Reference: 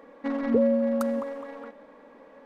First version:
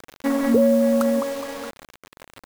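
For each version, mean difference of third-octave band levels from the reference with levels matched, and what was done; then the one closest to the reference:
7.5 dB: in parallel at +2.5 dB: brickwall limiter −19 dBFS, peak gain reduction 7.5 dB
on the sum: bit reduction 6 bits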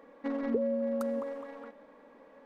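1.5 dB: dynamic equaliser 420 Hz, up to +8 dB, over −40 dBFS, Q 1.9
downward compressor 2.5 to 1, threshold −25 dBFS, peak gain reduction 9 dB
level −5 dB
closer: second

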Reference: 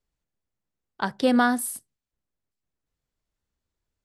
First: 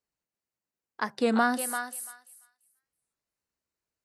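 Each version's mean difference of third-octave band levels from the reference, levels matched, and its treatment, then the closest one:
6.5 dB: high-pass filter 270 Hz 6 dB per octave
notch filter 3,400 Hz, Q 6.1
on a send: feedback echo with a high-pass in the loop 340 ms, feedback 17%, high-pass 1,100 Hz, level −4.5 dB
on the sum: wow of a warped record 33 1/3 rpm, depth 160 cents
level −2.5 dB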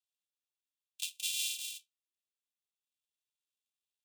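20.5 dB: samples sorted by size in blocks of 128 samples
downward compressor 1.5 to 1, threshold −28 dBFS, peak gain reduction 4.5 dB
Chebyshev high-pass with heavy ripple 2,500 Hz, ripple 6 dB
flanger 0.82 Hz, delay 10 ms, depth 3.3 ms, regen −56%
level +6.5 dB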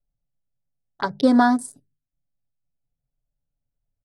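4.5 dB: adaptive Wiener filter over 41 samples
mains-hum notches 50/100/150/200 Hz
comb filter 7.1 ms, depth 80%
phaser swept by the level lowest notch 360 Hz, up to 2,700 Hz, full sweep at −25 dBFS
level +3.5 dB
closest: third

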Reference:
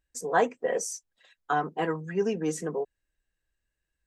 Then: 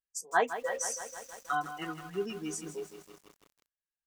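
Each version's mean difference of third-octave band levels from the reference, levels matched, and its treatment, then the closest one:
11.0 dB: noise reduction from a noise print of the clip's start 17 dB
low-shelf EQ 400 Hz −12 dB
feedback echo at a low word length 160 ms, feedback 80%, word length 8 bits, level −11 dB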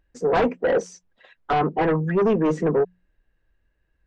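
5.5 dB: mains-hum notches 60/120/180 Hz
in parallel at −10.5 dB: sine wavefolder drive 15 dB, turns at −11.5 dBFS
on the sum: head-to-tape spacing loss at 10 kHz 36 dB
level +4 dB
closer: second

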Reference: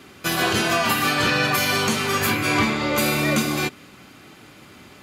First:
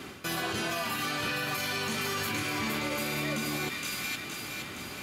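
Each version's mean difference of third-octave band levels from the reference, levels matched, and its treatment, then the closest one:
7.0 dB: reversed playback
downward compressor, threshold −29 dBFS, peak gain reduction 13 dB
reversed playback
delay with a high-pass on its return 467 ms, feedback 56%, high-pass 1,800 Hz, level −3.5 dB
brickwall limiter −26.5 dBFS, peak gain reduction 8 dB
level +3.5 dB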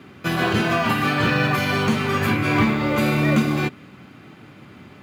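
5.0 dB: floating-point word with a short mantissa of 2 bits
high-pass filter 97 Hz
bass and treble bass +8 dB, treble −13 dB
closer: second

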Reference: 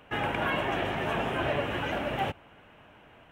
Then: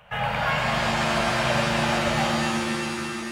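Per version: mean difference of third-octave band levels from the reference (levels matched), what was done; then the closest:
10.5 dB: Chebyshev band-stop filter 180–570 Hz, order 2
reverb with rising layers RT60 2.9 s, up +7 semitones, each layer −2 dB, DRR 1 dB
level +3.5 dB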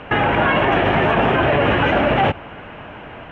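4.5 dB: low-pass filter 2,800 Hz 12 dB per octave
boost into a limiter +26.5 dB
level −7 dB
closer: second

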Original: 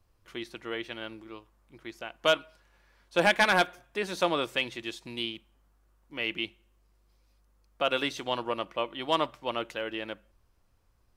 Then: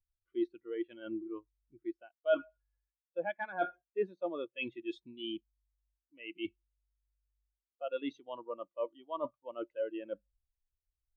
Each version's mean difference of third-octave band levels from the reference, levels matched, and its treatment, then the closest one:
13.5 dB: reversed playback
downward compressor 6 to 1, threshold −42 dBFS, peak gain reduction 21.5 dB
reversed playback
every bin expanded away from the loudest bin 2.5 to 1
level +8.5 dB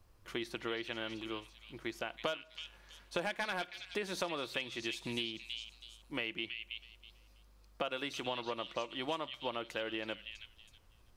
6.5 dB: downward compressor 8 to 1, threshold −38 dBFS, peak gain reduction 19 dB
on a send: echo through a band-pass that steps 325 ms, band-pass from 3,300 Hz, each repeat 0.7 octaves, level −3 dB
on the sum: level +3.5 dB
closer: second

